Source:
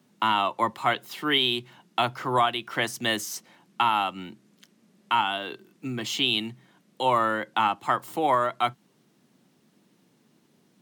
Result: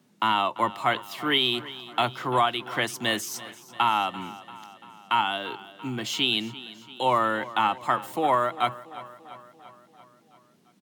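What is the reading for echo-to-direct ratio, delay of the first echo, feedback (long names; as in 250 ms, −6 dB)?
−15.0 dB, 341 ms, 60%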